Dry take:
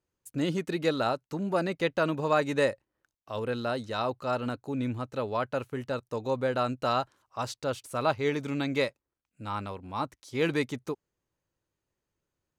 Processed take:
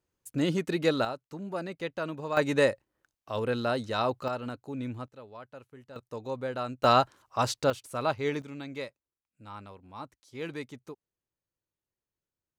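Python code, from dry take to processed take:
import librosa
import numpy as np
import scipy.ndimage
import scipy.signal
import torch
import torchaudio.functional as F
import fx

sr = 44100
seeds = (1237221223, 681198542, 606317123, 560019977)

y = fx.gain(x, sr, db=fx.steps((0.0, 1.5), (1.05, -7.0), (2.37, 2.0), (4.28, -4.5), (5.08, -16.0), (5.96, -5.5), (6.84, 6.0), (7.7, -2.0), (8.42, -10.0)))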